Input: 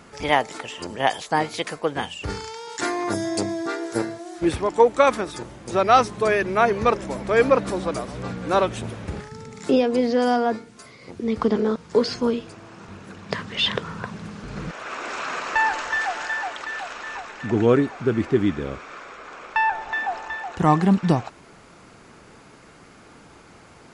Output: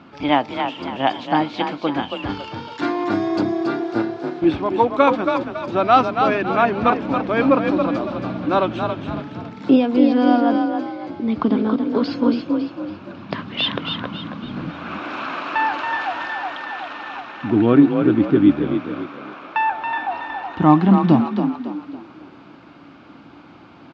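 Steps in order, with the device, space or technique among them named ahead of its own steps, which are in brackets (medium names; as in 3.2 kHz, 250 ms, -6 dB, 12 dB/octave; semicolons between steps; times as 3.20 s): frequency-shifting delay pedal into a guitar cabinet (frequency-shifting echo 277 ms, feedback 38%, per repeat +35 Hz, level -6 dB; cabinet simulation 98–3800 Hz, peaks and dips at 290 Hz +10 dB, 450 Hz -9 dB, 1.9 kHz -8 dB); trim +2.5 dB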